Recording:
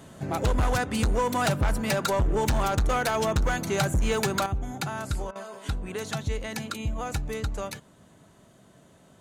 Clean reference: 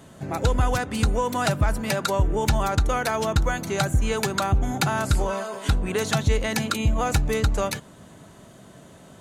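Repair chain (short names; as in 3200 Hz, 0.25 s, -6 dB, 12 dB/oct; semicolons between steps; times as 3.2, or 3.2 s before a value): clip repair -19.5 dBFS; interpolate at 5.31, 44 ms; gain 0 dB, from 4.46 s +8.5 dB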